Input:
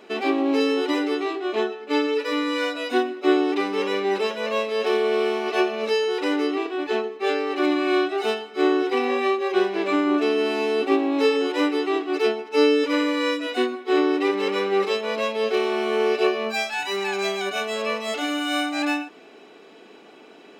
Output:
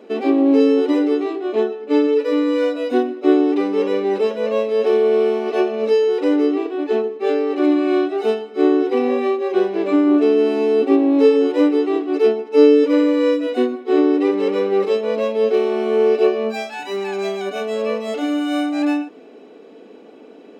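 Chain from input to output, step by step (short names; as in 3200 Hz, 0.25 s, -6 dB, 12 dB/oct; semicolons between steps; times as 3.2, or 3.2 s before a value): small resonant body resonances 260/470 Hz, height 14 dB, ringing for 20 ms; gain -5.5 dB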